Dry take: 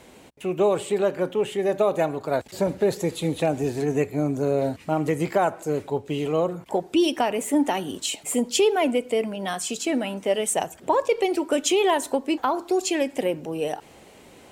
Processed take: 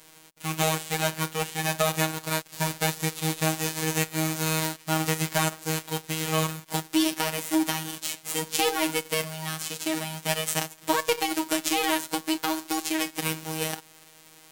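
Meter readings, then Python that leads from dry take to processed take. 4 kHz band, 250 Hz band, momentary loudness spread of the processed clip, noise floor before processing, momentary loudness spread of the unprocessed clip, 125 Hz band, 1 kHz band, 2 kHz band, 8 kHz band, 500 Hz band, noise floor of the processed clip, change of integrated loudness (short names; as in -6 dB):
+2.5 dB, -4.0 dB, 6 LU, -50 dBFS, 7 LU, +1.5 dB, -2.5 dB, +3.5 dB, +2.5 dB, -9.5 dB, -53 dBFS, -3.0 dB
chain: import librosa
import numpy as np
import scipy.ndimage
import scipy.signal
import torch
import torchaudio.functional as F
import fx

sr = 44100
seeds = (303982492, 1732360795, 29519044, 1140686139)

y = fx.envelope_flatten(x, sr, power=0.3)
y = fx.robotise(y, sr, hz=158.0)
y = y * librosa.db_to_amplitude(-1.5)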